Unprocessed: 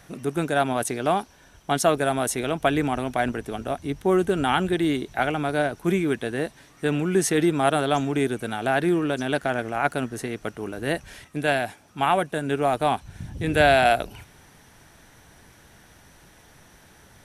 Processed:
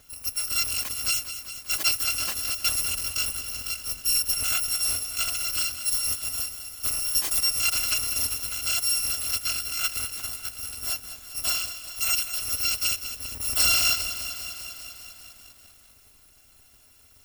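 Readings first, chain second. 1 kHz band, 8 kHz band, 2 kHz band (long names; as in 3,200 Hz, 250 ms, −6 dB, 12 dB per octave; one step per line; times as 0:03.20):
−16.5 dB, +10.5 dB, −4.5 dB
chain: samples in bit-reversed order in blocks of 256 samples
feedback echo at a low word length 199 ms, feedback 80%, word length 7 bits, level −11 dB
level −4 dB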